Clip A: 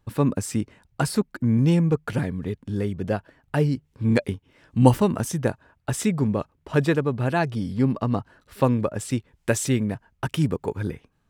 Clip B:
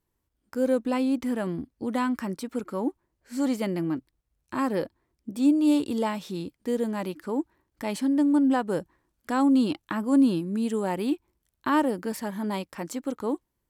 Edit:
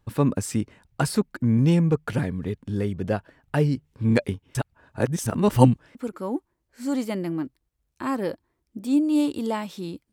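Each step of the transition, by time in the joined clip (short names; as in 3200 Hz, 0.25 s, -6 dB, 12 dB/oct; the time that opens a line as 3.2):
clip A
4.55–5.95 reverse
5.95 switch to clip B from 2.47 s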